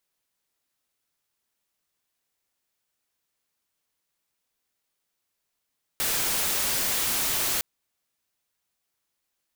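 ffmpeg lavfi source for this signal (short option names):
-f lavfi -i "anoisesrc=c=white:a=0.0868:d=1.61:r=44100:seed=1"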